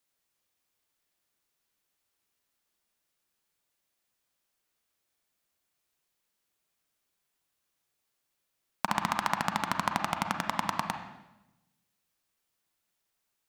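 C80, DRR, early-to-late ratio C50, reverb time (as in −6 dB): 9.0 dB, 5.0 dB, 7.0 dB, 1.0 s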